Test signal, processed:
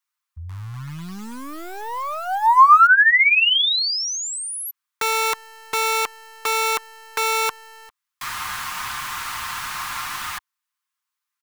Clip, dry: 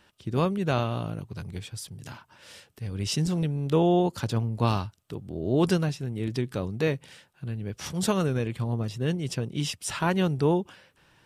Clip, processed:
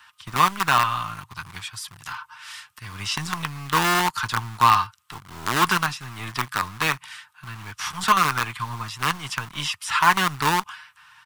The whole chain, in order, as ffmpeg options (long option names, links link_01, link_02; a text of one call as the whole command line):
ffmpeg -i in.wav -filter_complex "[0:a]highpass=frequency=83:poles=1,acrossover=split=4000[link_01][link_02];[link_02]acompressor=threshold=-39dB:ratio=4:attack=1:release=60[link_03];[link_01][link_03]amix=inputs=2:normalize=0,acrossover=split=170|710|3100[link_04][link_05][link_06][link_07];[link_05]acrusher=bits=5:dc=4:mix=0:aa=0.000001[link_08];[link_06]aecho=1:1:6.6:0.74[link_09];[link_04][link_08][link_09][link_07]amix=inputs=4:normalize=0,lowshelf=frequency=760:width_type=q:width=3:gain=-11.5,volume=8dB" out.wav